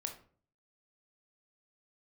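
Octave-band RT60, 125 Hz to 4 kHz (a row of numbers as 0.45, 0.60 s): 0.70, 0.60, 0.50, 0.40, 0.35, 0.30 s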